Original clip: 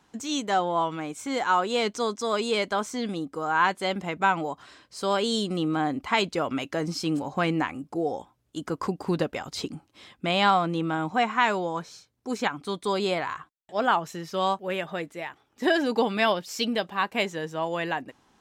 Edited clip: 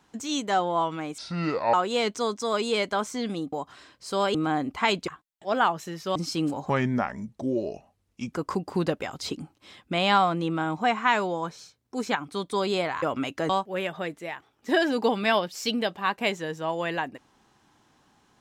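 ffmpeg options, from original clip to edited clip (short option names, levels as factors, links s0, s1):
-filter_complex "[0:a]asplit=11[s0][s1][s2][s3][s4][s5][s6][s7][s8][s9][s10];[s0]atrim=end=1.184[s11];[s1]atrim=start=1.18:end=1.53,asetpts=PTS-STARTPTS,asetrate=27783,aresample=44100[s12];[s2]atrim=start=1.526:end=3.322[s13];[s3]atrim=start=4.428:end=5.252[s14];[s4]atrim=start=5.638:end=6.372[s15];[s5]atrim=start=13.348:end=14.432[s16];[s6]atrim=start=6.838:end=7.384[s17];[s7]atrim=start=7.38:end=8.65,asetpts=PTS-STARTPTS,asetrate=34398,aresample=44100[s18];[s8]atrim=start=8.646:end=13.352[s19];[s9]atrim=start=6.368:end=6.842[s20];[s10]atrim=start=14.428[s21];[s11][s12]acrossfade=d=0.004:c1=hsin:c2=hsin[s22];[s22][s13]acrossfade=d=0.004:c1=hsin:c2=hsin[s23];[s23][s14]acrossfade=d=0.004:c1=hsin:c2=hsin[s24];[s24][s15]acrossfade=d=0.004:c1=hsin:c2=hsin[s25];[s25][s16]acrossfade=d=0.004:c1=hsin:c2=hsin[s26];[s26][s17]acrossfade=d=0.004:c1=hsin:c2=hsin[s27];[s27][s18]acrossfade=d=0.004:c1=hsin:c2=hsin[s28];[s28][s19]acrossfade=d=0.004:c1=hsin:c2=hsin[s29];[s29][s20]acrossfade=d=0.004:c1=hsin:c2=hsin[s30];[s30][s21]acrossfade=d=0.004:c1=hsin:c2=hsin"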